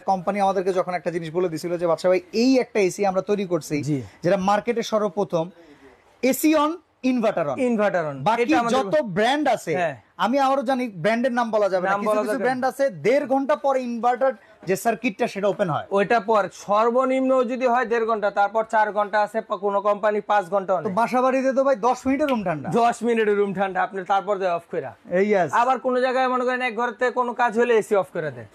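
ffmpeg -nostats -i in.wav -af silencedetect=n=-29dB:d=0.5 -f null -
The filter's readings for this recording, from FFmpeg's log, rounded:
silence_start: 5.46
silence_end: 6.23 | silence_duration: 0.78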